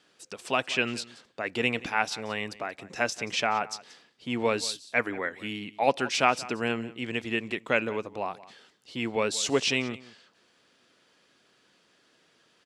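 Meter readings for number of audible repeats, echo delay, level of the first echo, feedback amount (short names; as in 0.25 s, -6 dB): 1, 0.18 s, -19.0 dB, no steady repeat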